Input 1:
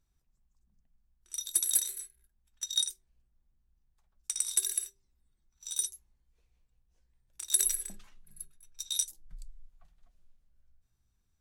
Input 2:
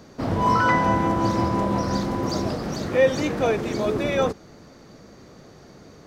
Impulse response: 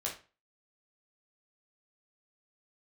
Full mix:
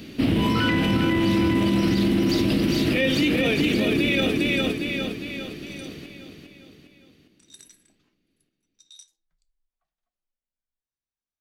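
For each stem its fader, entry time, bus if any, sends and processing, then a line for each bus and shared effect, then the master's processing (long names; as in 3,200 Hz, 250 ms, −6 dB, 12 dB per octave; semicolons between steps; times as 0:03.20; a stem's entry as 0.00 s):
−15.0 dB, 0.00 s, send −9 dB, no echo send, three-way crossover with the lows and the highs turned down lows −17 dB, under 240 Hz, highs −22 dB, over 7,100 Hz
+2.0 dB, 0.00 s, send −8.5 dB, echo send −3 dB, drawn EQ curve 140 Hz 0 dB, 200 Hz +3 dB, 300 Hz +7 dB, 490 Hz −6 dB, 1,000 Hz −12 dB, 1,600 Hz −3 dB, 2,800 Hz +14 dB, 6,400 Hz −5 dB, 10,000 Hz +9 dB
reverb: on, RT60 0.35 s, pre-delay 10 ms
echo: repeating echo 405 ms, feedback 51%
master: brickwall limiter −13 dBFS, peak gain reduction 11.5 dB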